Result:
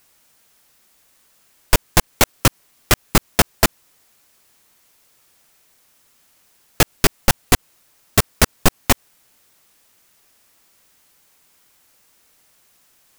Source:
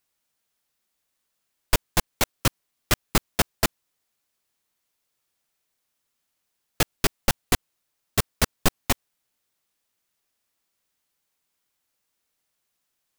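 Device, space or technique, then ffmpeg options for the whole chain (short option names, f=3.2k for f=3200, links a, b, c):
mastering chain: -af "equalizer=f=3.7k:t=o:w=0.77:g=-2,acompressor=threshold=-22dB:ratio=1.5,asoftclip=type=tanh:threshold=-10dB,alimiter=level_in=21dB:limit=-1dB:release=50:level=0:latency=1,volume=-1dB"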